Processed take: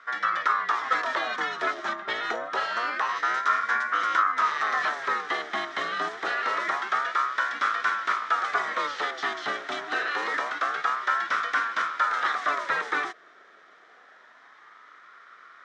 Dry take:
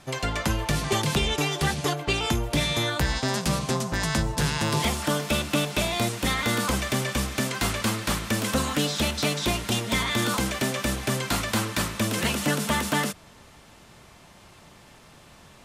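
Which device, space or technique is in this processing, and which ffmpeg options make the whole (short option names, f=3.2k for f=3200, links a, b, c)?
voice changer toy: -af "aeval=exprs='val(0)*sin(2*PI*880*n/s+880*0.45/0.26*sin(2*PI*0.26*n/s))':c=same,highpass=470,equalizer=f=550:t=q:w=4:g=-5,equalizer=f=870:t=q:w=4:g=-7,equalizer=f=1.3k:t=q:w=4:g=9,equalizer=f=1.8k:t=q:w=4:g=8,equalizer=f=2.7k:t=q:w=4:g=-10,equalizer=f=4.5k:t=q:w=4:g=-9,lowpass=f=4.7k:w=0.5412,lowpass=f=4.7k:w=1.3066"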